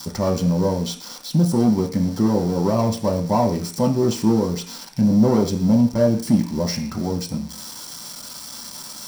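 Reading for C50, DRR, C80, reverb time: 11.0 dB, 1.5 dB, 15.5 dB, 0.45 s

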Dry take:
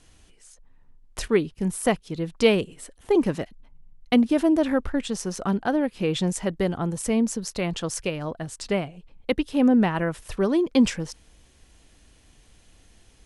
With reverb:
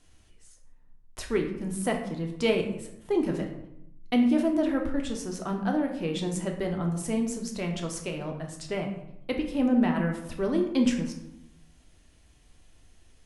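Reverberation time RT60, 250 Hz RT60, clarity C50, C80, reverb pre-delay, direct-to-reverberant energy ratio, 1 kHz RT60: 0.80 s, 1.1 s, 7.5 dB, 10.0 dB, 3 ms, 2.0 dB, 0.75 s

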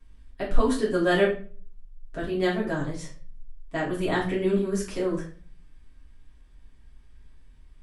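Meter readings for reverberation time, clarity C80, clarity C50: 0.40 s, 11.5 dB, 7.5 dB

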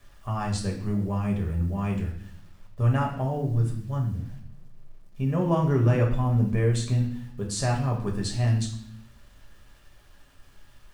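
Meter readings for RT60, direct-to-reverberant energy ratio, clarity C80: 0.60 s, -1.0 dB, 10.5 dB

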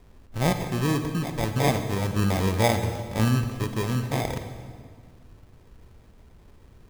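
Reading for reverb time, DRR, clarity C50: 1.8 s, 7.0 dB, 8.0 dB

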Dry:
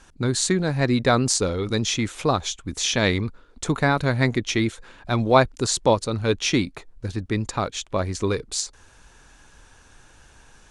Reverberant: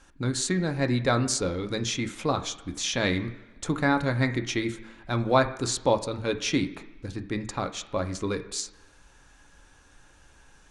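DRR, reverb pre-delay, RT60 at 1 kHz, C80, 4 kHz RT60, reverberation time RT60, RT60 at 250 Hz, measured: 6.0 dB, 3 ms, 1.1 s, 15.0 dB, 1.2 s, 1.1 s, 1.0 s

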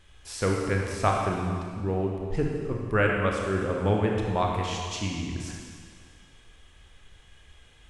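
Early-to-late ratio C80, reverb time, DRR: 2.0 dB, 2.1 s, -1.0 dB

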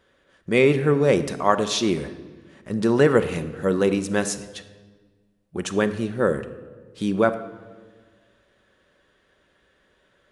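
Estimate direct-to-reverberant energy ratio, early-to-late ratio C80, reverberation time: 9.0 dB, 14.0 dB, 1.5 s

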